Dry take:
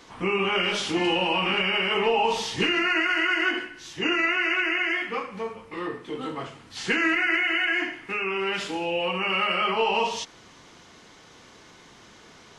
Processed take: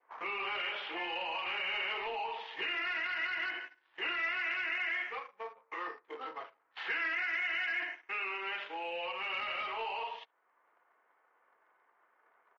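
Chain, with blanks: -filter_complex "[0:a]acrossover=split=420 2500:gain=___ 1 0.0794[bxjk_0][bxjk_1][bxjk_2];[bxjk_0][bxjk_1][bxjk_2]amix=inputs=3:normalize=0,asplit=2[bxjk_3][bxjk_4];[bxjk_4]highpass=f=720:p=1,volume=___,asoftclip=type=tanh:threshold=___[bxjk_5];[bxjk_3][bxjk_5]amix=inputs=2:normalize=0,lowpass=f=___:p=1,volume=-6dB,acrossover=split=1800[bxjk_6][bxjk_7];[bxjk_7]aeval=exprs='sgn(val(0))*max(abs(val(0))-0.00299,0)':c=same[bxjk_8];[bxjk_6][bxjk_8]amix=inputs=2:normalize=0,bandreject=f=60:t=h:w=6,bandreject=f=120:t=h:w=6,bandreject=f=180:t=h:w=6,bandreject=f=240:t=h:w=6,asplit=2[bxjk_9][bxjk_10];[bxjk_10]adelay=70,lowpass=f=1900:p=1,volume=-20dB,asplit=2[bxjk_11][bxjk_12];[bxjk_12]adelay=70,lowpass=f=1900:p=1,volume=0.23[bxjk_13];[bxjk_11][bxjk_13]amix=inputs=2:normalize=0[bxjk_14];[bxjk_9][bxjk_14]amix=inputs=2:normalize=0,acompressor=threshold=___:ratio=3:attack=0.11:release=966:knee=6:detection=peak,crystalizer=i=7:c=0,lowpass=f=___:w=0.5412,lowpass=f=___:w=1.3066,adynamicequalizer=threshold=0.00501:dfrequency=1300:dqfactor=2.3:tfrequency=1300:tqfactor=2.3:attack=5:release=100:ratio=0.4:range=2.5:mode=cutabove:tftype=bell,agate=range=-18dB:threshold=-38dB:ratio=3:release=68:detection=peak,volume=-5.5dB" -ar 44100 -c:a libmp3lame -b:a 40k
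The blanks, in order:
0.0631, 13dB, -14dB, 2300, -32dB, 3600, 3600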